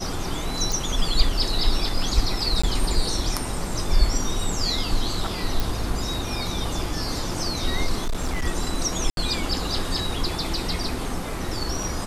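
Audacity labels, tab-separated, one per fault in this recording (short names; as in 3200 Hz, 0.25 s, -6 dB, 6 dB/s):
0.720000	0.720000	pop
2.620000	2.630000	gap 15 ms
5.600000	5.600000	pop
8.010000	8.470000	clipped -20.5 dBFS
9.100000	9.170000	gap 72 ms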